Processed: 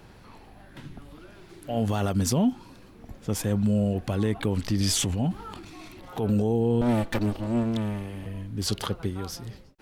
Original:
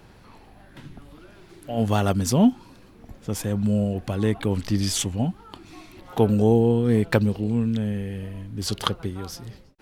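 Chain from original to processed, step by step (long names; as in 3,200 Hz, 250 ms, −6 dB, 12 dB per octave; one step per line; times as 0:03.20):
0:06.81–0:08.26: lower of the sound and its delayed copy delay 3.4 ms
brickwall limiter −15.5 dBFS, peak gain reduction 11 dB
0:04.81–0:06.24: transient designer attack −5 dB, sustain +7 dB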